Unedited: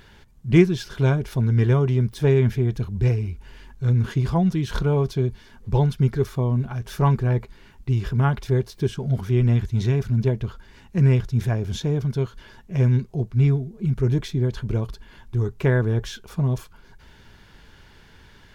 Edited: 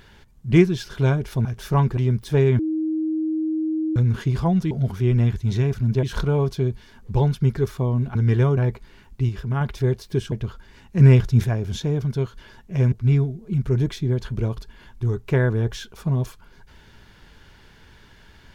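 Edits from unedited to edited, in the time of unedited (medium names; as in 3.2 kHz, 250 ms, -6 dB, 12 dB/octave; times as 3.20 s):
1.45–1.87 s: swap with 6.73–7.25 s
2.49–3.86 s: bleep 315 Hz -20.5 dBFS
7.97–8.29 s: gain -4.5 dB
9.00–10.32 s: move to 4.61 s
11.00–11.44 s: gain +5 dB
12.92–13.24 s: delete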